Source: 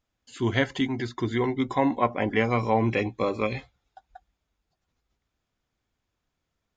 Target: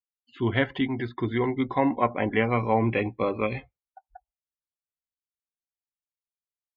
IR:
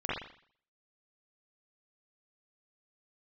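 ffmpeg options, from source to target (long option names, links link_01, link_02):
-af "afftdn=noise_reduction=35:noise_floor=-47,lowpass=frequency=3400:width=0.5412,lowpass=frequency=3400:width=1.3066"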